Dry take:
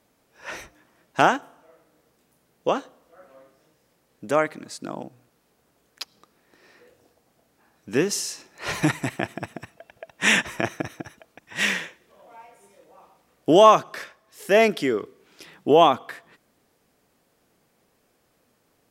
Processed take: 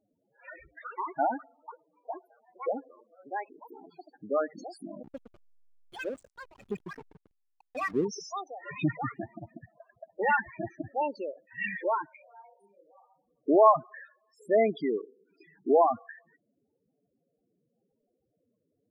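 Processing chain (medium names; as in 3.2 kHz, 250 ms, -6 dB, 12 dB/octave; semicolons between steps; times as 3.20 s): ever faster or slower copies 91 ms, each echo +5 st, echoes 3, each echo -6 dB; loudest bins only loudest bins 8; 5.03–8.05 s: hysteresis with a dead band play -33.5 dBFS; trim -5.5 dB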